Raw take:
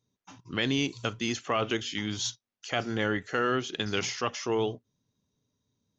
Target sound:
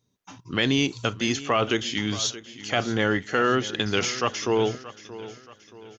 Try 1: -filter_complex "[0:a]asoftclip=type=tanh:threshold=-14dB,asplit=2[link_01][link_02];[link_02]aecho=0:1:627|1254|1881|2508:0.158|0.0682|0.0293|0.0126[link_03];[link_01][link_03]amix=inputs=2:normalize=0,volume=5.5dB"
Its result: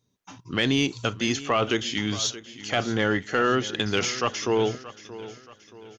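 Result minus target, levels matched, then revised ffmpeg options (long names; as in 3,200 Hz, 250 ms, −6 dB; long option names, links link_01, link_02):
soft clipping: distortion +15 dB
-filter_complex "[0:a]asoftclip=type=tanh:threshold=-6dB,asplit=2[link_01][link_02];[link_02]aecho=0:1:627|1254|1881|2508:0.158|0.0682|0.0293|0.0126[link_03];[link_01][link_03]amix=inputs=2:normalize=0,volume=5.5dB"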